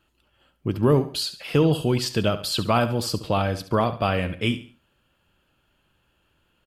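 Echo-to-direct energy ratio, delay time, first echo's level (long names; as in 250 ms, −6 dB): −12.5 dB, 70 ms, −13.0 dB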